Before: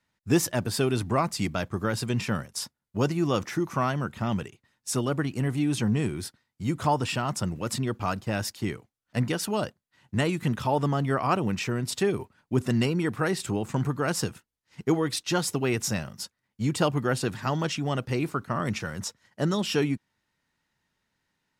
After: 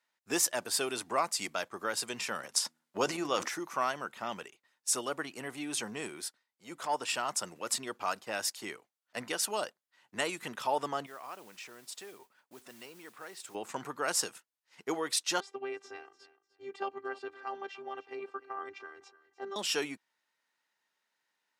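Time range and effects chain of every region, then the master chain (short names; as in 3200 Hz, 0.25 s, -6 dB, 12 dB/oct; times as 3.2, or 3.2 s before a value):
2.39–3.48 high shelf 9400 Hz -7.5 dB + de-hum 80.39 Hz, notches 4 + transient shaper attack +7 dB, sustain +11 dB
6.2–7.14 HPF 110 Hz + transient shaper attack -10 dB, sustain -3 dB
11.06–13.55 modulation noise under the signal 18 dB + compressor 2:1, threshold -48 dBFS
15.4–19.56 robotiser 395 Hz + tape spacing loss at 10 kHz 34 dB + feedback echo 0.299 s, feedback 22%, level -17.5 dB
whole clip: HPF 530 Hz 12 dB/oct; dynamic EQ 8200 Hz, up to +6 dB, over -47 dBFS, Q 0.83; gain -3 dB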